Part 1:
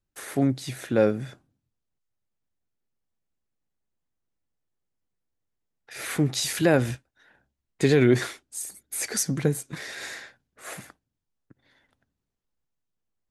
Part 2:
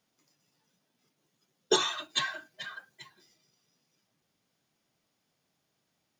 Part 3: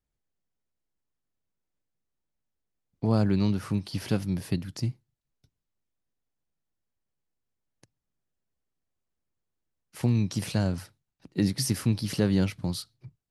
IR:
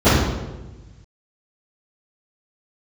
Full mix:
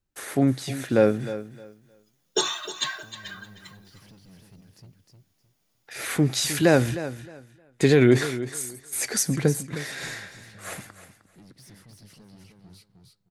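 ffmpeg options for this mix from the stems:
-filter_complex "[0:a]volume=2dB,asplit=2[a][b];[b]volume=-13.5dB[c];[1:a]highshelf=f=8.2k:g=12,adelay=650,volume=0dB,asplit=2[d][e];[e]volume=-13dB[f];[2:a]alimiter=limit=-20.5dB:level=0:latency=1:release=389,asoftclip=type=tanh:threshold=-33dB,volume=-14dB,asplit=2[g][h];[h]volume=-4dB[i];[c][f][i]amix=inputs=3:normalize=0,aecho=0:1:309|618|927:1|0.21|0.0441[j];[a][d][g][j]amix=inputs=4:normalize=0"

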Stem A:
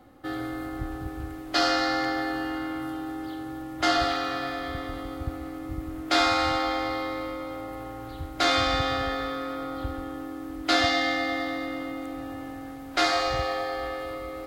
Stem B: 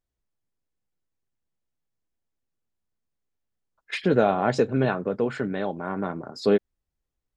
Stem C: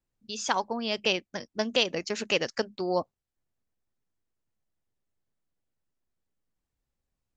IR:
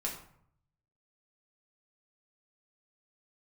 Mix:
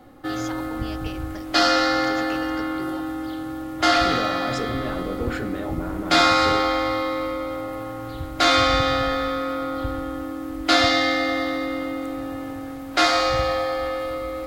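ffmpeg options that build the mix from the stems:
-filter_complex "[0:a]volume=1.5dB,asplit=2[a][b];[b]volume=-4.5dB[c];[1:a]alimiter=level_in=2.5dB:limit=-24dB:level=0:latency=1:release=26,volume=-2.5dB,volume=1dB,asplit=2[d][e];[e]volume=-5dB[f];[2:a]acompressor=threshold=-32dB:ratio=6,volume=-4dB[g];[3:a]atrim=start_sample=2205[h];[c][f]amix=inputs=2:normalize=0[i];[i][h]afir=irnorm=-1:irlink=0[j];[a][d][g][j]amix=inputs=4:normalize=0"

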